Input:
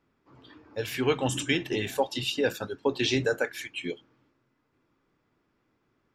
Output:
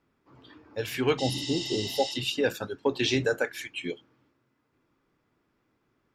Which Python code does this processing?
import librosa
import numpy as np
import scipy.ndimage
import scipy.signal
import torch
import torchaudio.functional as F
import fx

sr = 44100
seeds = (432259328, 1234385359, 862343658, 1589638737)

y = fx.spec_repair(x, sr, seeds[0], start_s=1.21, length_s=0.88, low_hz=850.0, high_hz=9200.0, source='after')
y = fx.cheby_harmonics(y, sr, harmonics=(5, 7), levels_db=(-32, -34), full_scale_db=-11.0)